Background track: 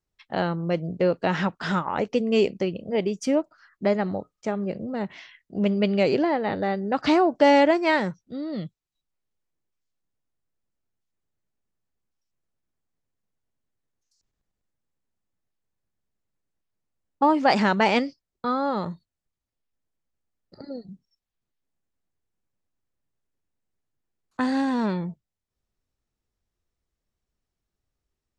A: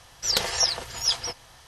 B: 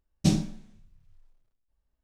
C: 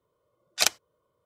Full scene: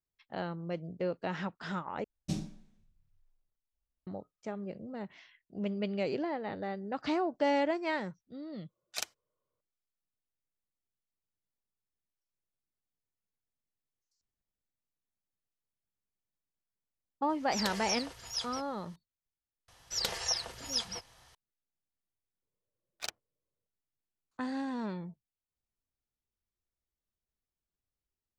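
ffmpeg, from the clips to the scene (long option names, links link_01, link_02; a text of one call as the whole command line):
ffmpeg -i bed.wav -i cue0.wav -i cue1.wav -i cue2.wav -filter_complex "[3:a]asplit=2[link_01][link_02];[1:a]asplit=2[link_03][link_04];[0:a]volume=-12dB[link_05];[link_02]adynamicsmooth=sensitivity=4.5:basefreq=550[link_06];[link_05]asplit=2[link_07][link_08];[link_07]atrim=end=2.044[link_09];[2:a]atrim=end=2.03,asetpts=PTS-STARTPTS,volume=-12.5dB[link_10];[link_08]atrim=start=4.066[link_11];[link_01]atrim=end=1.25,asetpts=PTS-STARTPTS,volume=-14.5dB,afade=type=in:duration=0.004:curve=hsin,afade=type=out:start_time=1.246:duration=0.004:curve=hsin,adelay=8360[link_12];[link_03]atrim=end=1.67,asetpts=PTS-STARTPTS,volume=-12.5dB,afade=type=in:duration=0.004:curve=hsin,afade=type=out:start_time=1.666:duration=0.004:curve=hsin,adelay=17290[link_13];[link_04]atrim=end=1.67,asetpts=PTS-STARTPTS,volume=-9.5dB,afade=type=in:duration=0.004:curve=hsin,afade=type=out:start_time=1.666:duration=0.004:curve=hsin,adelay=19680[link_14];[link_06]atrim=end=1.25,asetpts=PTS-STARTPTS,volume=-16dB,afade=type=in:duration=0.004:curve=hsin,afade=type=out:start_time=1.246:duration=0.004:curve=hsin,adelay=22420[link_15];[link_09][link_10]acrossfade=duration=0.004:curve1=hsin:curve2=hsin[link_16];[link_16][link_11]acrossfade=duration=0.004:curve1=hsin:curve2=hsin[link_17];[link_17][link_12][link_13][link_14][link_15]amix=inputs=5:normalize=0" out.wav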